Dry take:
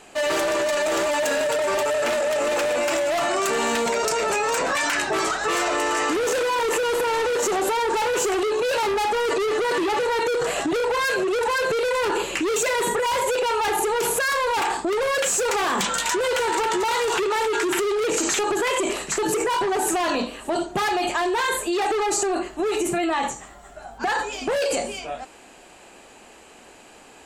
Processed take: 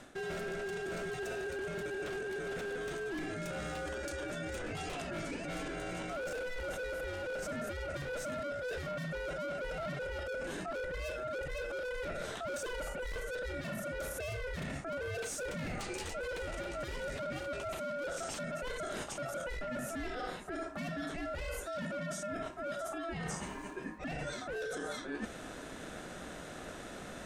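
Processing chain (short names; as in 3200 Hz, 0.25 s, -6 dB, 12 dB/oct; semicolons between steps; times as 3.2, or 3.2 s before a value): notch 890 Hz, Q 12; ring modulator 1000 Hz; tilt shelf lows +5.5 dB, about 830 Hz; limiter -22.5 dBFS, peak gain reduction 8 dB; reverse; compressor 12:1, threshold -42 dBFS, peak gain reduction 16.5 dB; reverse; gain +5.5 dB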